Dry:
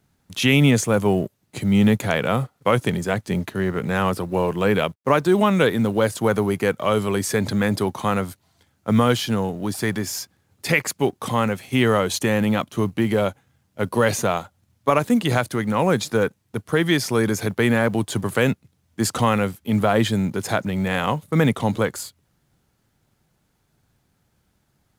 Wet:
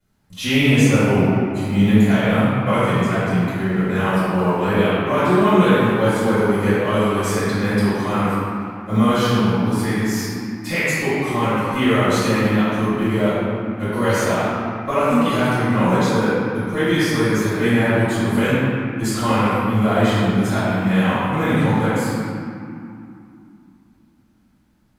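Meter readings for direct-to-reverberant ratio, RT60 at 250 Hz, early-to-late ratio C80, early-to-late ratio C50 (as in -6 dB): -17.5 dB, 3.8 s, -3.0 dB, -5.5 dB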